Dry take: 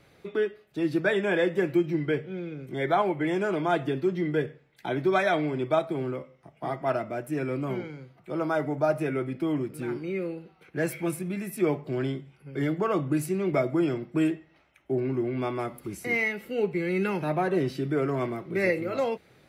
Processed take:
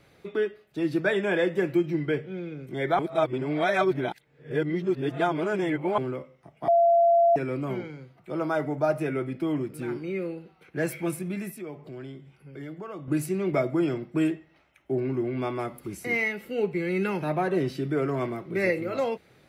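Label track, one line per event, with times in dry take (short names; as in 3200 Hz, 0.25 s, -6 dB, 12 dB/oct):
2.990000	5.980000	reverse
6.680000	7.360000	bleep 682 Hz -16 dBFS
11.510000	13.080000	compressor 2:1, threshold -45 dBFS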